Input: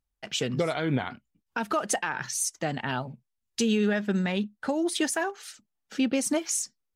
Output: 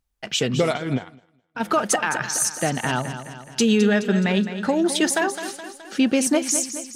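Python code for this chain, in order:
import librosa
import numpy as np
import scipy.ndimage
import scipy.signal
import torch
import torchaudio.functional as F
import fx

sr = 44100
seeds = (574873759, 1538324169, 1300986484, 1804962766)

y = fx.echo_feedback(x, sr, ms=211, feedback_pct=54, wet_db=-11)
y = fx.upward_expand(y, sr, threshold_db=-45.0, expansion=2.5, at=(0.76, 1.59), fade=0.02)
y = F.gain(torch.from_numpy(y), 6.5).numpy()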